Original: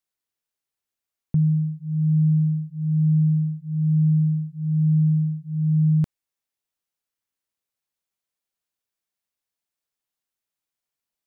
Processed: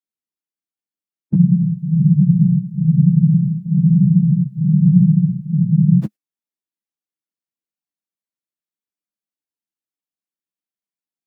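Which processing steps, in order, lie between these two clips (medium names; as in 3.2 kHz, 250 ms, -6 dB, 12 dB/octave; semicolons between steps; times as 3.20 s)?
phase randomisation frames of 50 ms; high-pass 120 Hz 24 dB/octave; gate -38 dBFS, range -16 dB; in parallel at -1.5 dB: compression, threshold -26 dBFS, peak gain reduction 12 dB; on the sum: small resonant body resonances 210/300 Hz, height 11 dB, ringing for 50 ms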